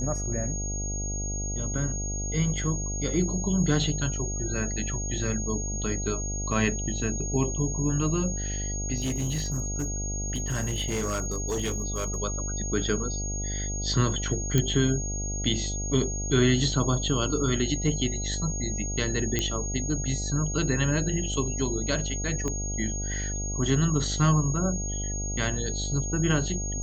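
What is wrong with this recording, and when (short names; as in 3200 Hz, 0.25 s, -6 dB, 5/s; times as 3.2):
buzz 50 Hz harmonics 16 -32 dBFS
tone 6600 Hz -33 dBFS
8.98–12.18 clipped -24.5 dBFS
14.58 pop -10 dBFS
19.39 pop -11 dBFS
22.48 pop -18 dBFS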